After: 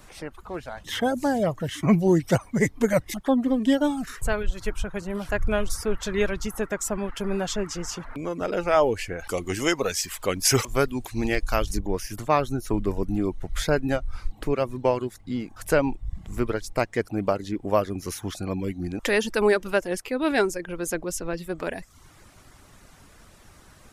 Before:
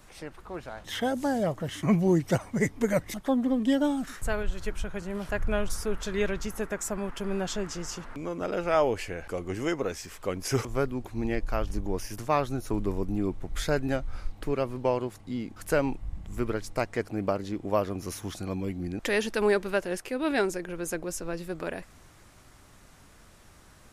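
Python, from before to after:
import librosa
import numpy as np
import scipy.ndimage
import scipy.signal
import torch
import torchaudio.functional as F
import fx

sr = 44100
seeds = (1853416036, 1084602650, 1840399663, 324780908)

y = fx.dereverb_blind(x, sr, rt60_s=0.56)
y = fx.high_shelf(y, sr, hz=2100.0, db=11.0, at=(9.19, 11.79))
y = y * librosa.db_to_amplitude(4.5)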